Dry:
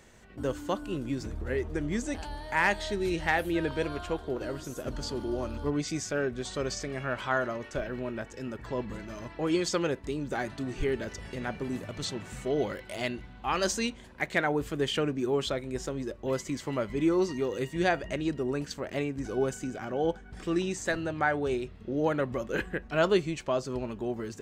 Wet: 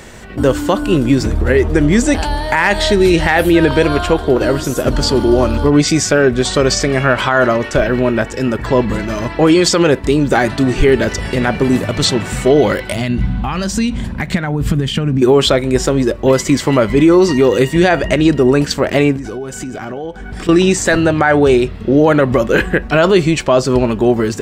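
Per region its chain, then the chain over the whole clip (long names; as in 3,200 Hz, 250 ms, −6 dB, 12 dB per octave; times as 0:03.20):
0:12.92–0:15.22: downward compressor, threshold −39 dBFS + low shelf with overshoot 270 Hz +10 dB, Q 1.5 + one half of a high-frequency compander decoder only
0:19.16–0:20.49: notch filter 530 Hz, Q 17 + downward compressor 10 to 1, threshold −42 dBFS
whole clip: notch filter 6,400 Hz, Q 15; boost into a limiter +22 dB; level −1 dB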